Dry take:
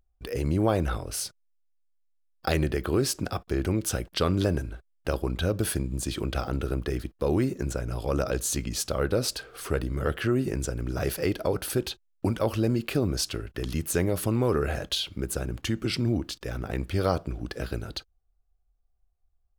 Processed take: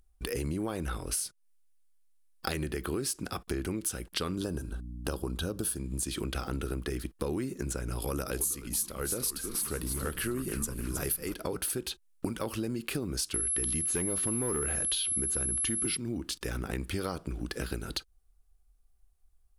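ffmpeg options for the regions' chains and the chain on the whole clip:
-filter_complex "[0:a]asettb=1/sr,asplit=3[a][b][c];[a]atrim=end=4.364[d];[b]atrim=start=4.36:end=5.78,asetpts=PTS-STARTPTS,afade=t=in:d=0.004:c=qsin,afade=t=out:st=1.416:d=0.004:c=qsin,equalizer=f=2.1k:t=o:w=0.44:g=-14,aeval=exprs='val(0)+0.00708*(sin(2*PI*60*n/s)+sin(2*PI*2*60*n/s)/2+sin(2*PI*3*60*n/s)/3+sin(2*PI*4*60*n/s)/4+sin(2*PI*5*60*n/s)/5)':c=same[e];[c]atrim=start=5.776[f];[d][e]acrossfade=d=0.004:c1=hsin:c2=qsin[g];[g][f]acrossfade=d=0.004:c1=qsin:c2=hsin,asettb=1/sr,asplit=3[h][i][j];[h]atrim=end=8.024[k];[i]atrim=start=8.02:end=11.34,asetpts=PTS-STARTPTS,afade=t=in:d=0.004:c=qsin,afade=t=out:st=3.316:d=0.004:c=qsin,equalizer=f=12k:w=1.3:g=13,asplit=6[l][m][n][o][p][q];[m]adelay=316,afreqshift=-140,volume=-9dB[r];[n]adelay=632,afreqshift=-280,volume=-15.6dB[s];[o]adelay=948,afreqshift=-420,volume=-22.1dB[t];[p]adelay=1264,afreqshift=-560,volume=-28.7dB[u];[q]adelay=1580,afreqshift=-700,volume=-35.2dB[v];[l][r][s][t][u][v]amix=inputs=6:normalize=0,atrim=end_sample=146412[w];[j]atrim=start=11.336[x];[k][w]acrossfade=d=0.004:c1=hsin:c2=qsin[y];[y][x]acrossfade=d=0.004:c1=qsin:c2=hsin,asettb=1/sr,asplit=3[z][aa][ab];[z]atrim=end=13.344[ac];[aa]atrim=start=13.34:end=15.97,asetpts=PTS-STARTPTS,afade=t=in:d=0.004:c=qsin,afade=t=out:st=2.626:d=0.004:c=qsin,acrossover=split=5300[ad][ae];[ae]acompressor=threshold=-50dB:ratio=4:attack=1:release=60[af];[ad][af]amix=inputs=2:normalize=0,aeval=exprs='val(0)+0.02*sin(2*PI*11000*n/s)':c=same,aeval=exprs='0.282*sin(PI/2*1.58*val(0)/0.282)':c=same[ag];[ab]atrim=start=15.966[ah];[ac][ag]acrossfade=d=0.004:c1=hsin:c2=qsin[ai];[ai][ah]acrossfade=d=0.004:c1=qsin:c2=hsin,equalizer=f=100:t=o:w=0.67:g=-9,equalizer=f=630:t=o:w=0.67:g=-8,equalizer=f=10k:t=o:w=0.67:g=10,acompressor=threshold=-37dB:ratio=6,volume=6dB"

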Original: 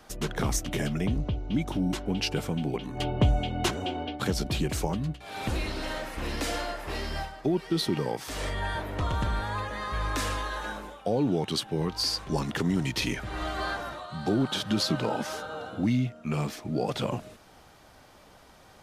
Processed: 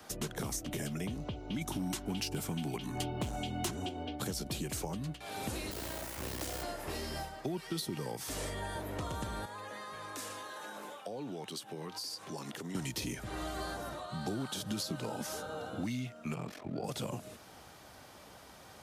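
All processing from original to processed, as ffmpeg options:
-filter_complex "[0:a]asettb=1/sr,asplit=3[a][b][c];[a]atrim=end=1.614[d];[b]atrim=start=1.61:end=3.89,asetpts=PTS-STARTPTS,afade=t=in:d=0.004:c=qsin,afade=t=out:st=2.276:d=0.004:c=qsin,equalizer=f=510:t=o:w=0.41:g=-9.5,acontrast=53,asoftclip=type=hard:threshold=-14.5dB[e];[c]atrim=start=3.886[f];[d][e]acrossfade=d=0.004:c1=hsin:c2=qsin[g];[g][f]acrossfade=d=0.004:c1=qsin:c2=hsin,asettb=1/sr,asplit=3[h][i][j];[h]atrim=end=5.714[k];[i]atrim=start=5.71:end=6.63,asetpts=PTS-STARTPTS,afade=t=in:d=0.004:c=qsin,afade=t=out:st=0.916:d=0.004:c=qsin,afreqshift=26,asubboost=boost=7.5:cutoff=60,acrusher=bits=4:dc=4:mix=0:aa=0.000001[l];[j]atrim=start=6.626[m];[k][l]acrossfade=d=0.004:c1=hsin:c2=qsin[n];[n][m]acrossfade=d=0.004:c1=qsin:c2=hsin,asettb=1/sr,asplit=3[o][p][q];[o]atrim=end=9.454[r];[p]atrim=start=9.45:end=12.75,asetpts=PTS-STARTPTS,afade=t=in:d=0.004:c=qsin,afade=t=out:st=3.296:d=0.004:c=qsin,lowshelf=f=250:g=-11.5,acompressor=threshold=-40dB:ratio=2.5:attack=3.2:release=140:knee=1:detection=peak,highpass=f=100:w=0.5412,highpass=f=100:w=1.3066[s];[q]atrim=start=12.746[t];[r][s]acrossfade=d=0.004:c1=hsin:c2=qsin[u];[u][t]acrossfade=d=0.004:c1=qsin:c2=hsin,asettb=1/sr,asplit=3[v][w][x];[v]atrim=end=16.344[y];[w]atrim=start=16.34:end=16.84,asetpts=PTS-STARTPTS,afade=t=in:d=0.004:c=qsin,afade=t=out:st=0.496:d=0.004:c=qsin,bass=f=250:g=-2,treble=f=4k:g=-14,acompressor=mode=upward:threshold=-40dB:ratio=2.5:attack=3.2:release=140:knee=2.83:detection=peak,aeval=exprs='val(0)*sin(2*PI*22*n/s)':c=same[z];[x]atrim=start=16.836[aa];[y][z]acrossfade=d=0.004:c1=hsin:c2=qsin[ab];[ab][aa]acrossfade=d=0.004:c1=qsin:c2=hsin,highpass=61,highshelf=f=6.2k:g=5.5,acrossover=split=190|700|5900[ac][ad][ae][af];[ac]acompressor=threshold=-43dB:ratio=4[ag];[ad]acompressor=threshold=-41dB:ratio=4[ah];[ae]acompressor=threshold=-46dB:ratio=4[ai];[af]acompressor=threshold=-41dB:ratio=4[aj];[ag][ah][ai][aj]amix=inputs=4:normalize=0"

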